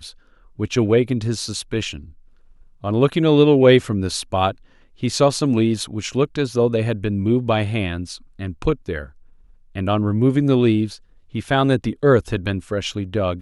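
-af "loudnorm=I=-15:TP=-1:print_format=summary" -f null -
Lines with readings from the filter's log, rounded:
Input Integrated:    -19.6 LUFS
Input True Peak:      -1.9 dBTP
Input LRA:             5.0 LU
Input Threshold:     -30.4 LUFS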